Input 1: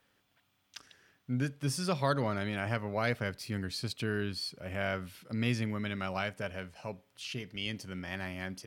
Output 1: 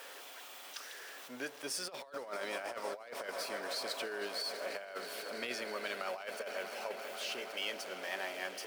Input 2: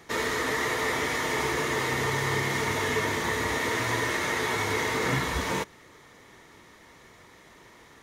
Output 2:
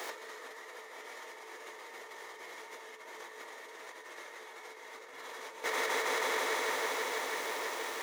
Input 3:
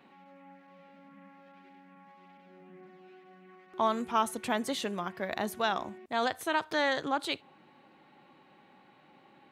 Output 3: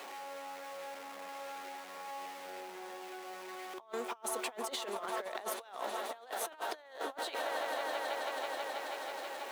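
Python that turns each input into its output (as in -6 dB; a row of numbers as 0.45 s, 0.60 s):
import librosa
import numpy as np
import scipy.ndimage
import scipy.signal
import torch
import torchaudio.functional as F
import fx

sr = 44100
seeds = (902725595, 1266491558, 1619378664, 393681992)

p1 = x + 0.5 * 10.0 ** (-42.5 / 20.0) * np.sign(x)
p2 = fx.ladder_highpass(p1, sr, hz=390.0, resonance_pct=30)
p3 = p2 + fx.echo_swell(p2, sr, ms=162, loudest=5, wet_db=-17, dry=0)
p4 = fx.over_compress(p3, sr, threshold_db=-42.0, ratio=-0.5)
y = p4 * librosa.db_to_amplitude(3.0)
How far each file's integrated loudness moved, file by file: -5.0 LU, -10.5 LU, -8.5 LU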